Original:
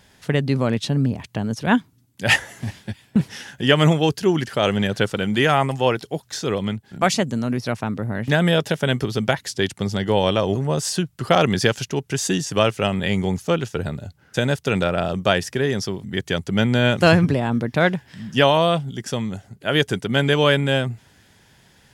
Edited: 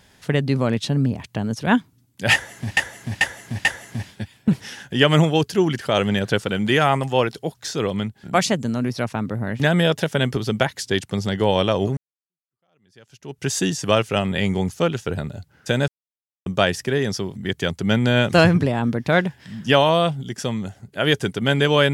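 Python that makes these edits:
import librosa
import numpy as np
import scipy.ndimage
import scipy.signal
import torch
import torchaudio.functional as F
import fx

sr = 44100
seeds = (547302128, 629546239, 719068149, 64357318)

y = fx.edit(x, sr, fx.repeat(start_s=2.33, length_s=0.44, count=4),
    fx.fade_in_span(start_s=10.65, length_s=1.48, curve='exp'),
    fx.silence(start_s=14.56, length_s=0.58), tone=tone)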